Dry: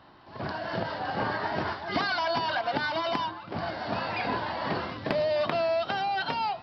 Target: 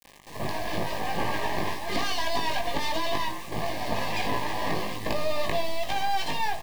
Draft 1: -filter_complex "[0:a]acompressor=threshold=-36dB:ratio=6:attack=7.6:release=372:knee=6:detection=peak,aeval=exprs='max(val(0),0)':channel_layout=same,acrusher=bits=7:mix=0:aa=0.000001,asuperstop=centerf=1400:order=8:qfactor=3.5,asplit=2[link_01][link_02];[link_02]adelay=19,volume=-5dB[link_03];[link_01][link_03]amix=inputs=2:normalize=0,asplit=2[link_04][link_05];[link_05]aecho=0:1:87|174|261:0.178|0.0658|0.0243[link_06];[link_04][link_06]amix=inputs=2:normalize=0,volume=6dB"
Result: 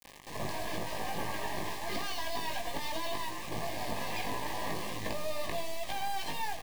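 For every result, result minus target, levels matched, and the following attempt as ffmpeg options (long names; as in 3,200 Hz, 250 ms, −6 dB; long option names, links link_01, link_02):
echo 28 ms late; downward compressor: peak gain reduction +9.5 dB
-filter_complex "[0:a]acompressor=threshold=-36dB:ratio=6:attack=7.6:release=372:knee=6:detection=peak,aeval=exprs='max(val(0),0)':channel_layout=same,acrusher=bits=7:mix=0:aa=0.000001,asuperstop=centerf=1400:order=8:qfactor=3.5,asplit=2[link_01][link_02];[link_02]adelay=19,volume=-5dB[link_03];[link_01][link_03]amix=inputs=2:normalize=0,asplit=2[link_04][link_05];[link_05]aecho=0:1:59|118|177:0.178|0.0658|0.0243[link_06];[link_04][link_06]amix=inputs=2:normalize=0,volume=6dB"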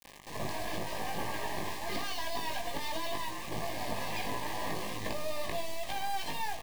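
downward compressor: peak gain reduction +9.5 dB
-filter_complex "[0:a]acompressor=threshold=-24.5dB:ratio=6:attack=7.6:release=372:knee=6:detection=peak,aeval=exprs='max(val(0),0)':channel_layout=same,acrusher=bits=7:mix=0:aa=0.000001,asuperstop=centerf=1400:order=8:qfactor=3.5,asplit=2[link_01][link_02];[link_02]adelay=19,volume=-5dB[link_03];[link_01][link_03]amix=inputs=2:normalize=0,asplit=2[link_04][link_05];[link_05]aecho=0:1:59|118|177:0.178|0.0658|0.0243[link_06];[link_04][link_06]amix=inputs=2:normalize=0,volume=6dB"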